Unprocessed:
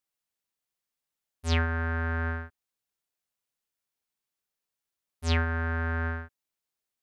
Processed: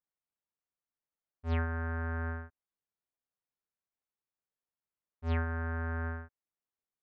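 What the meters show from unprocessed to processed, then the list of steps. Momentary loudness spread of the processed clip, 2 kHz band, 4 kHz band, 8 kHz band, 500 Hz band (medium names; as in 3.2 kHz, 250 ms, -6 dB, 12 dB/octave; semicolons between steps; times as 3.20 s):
11 LU, -8.5 dB, -18.5 dB, under -25 dB, -5.0 dB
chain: low-pass 1.6 kHz 12 dB/octave; trim -5 dB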